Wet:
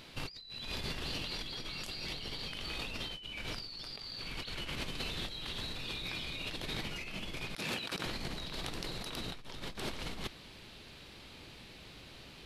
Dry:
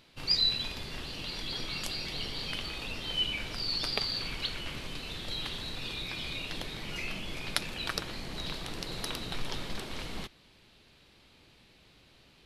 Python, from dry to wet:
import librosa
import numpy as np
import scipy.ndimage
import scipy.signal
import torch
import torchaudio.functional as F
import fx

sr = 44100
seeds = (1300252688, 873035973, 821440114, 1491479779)

y = fx.highpass(x, sr, hz=130.0, slope=12, at=(7.57, 8.06))
y = fx.over_compress(y, sr, threshold_db=-43.0, ratio=-1.0)
y = y * 10.0 ** (1.5 / 20.0)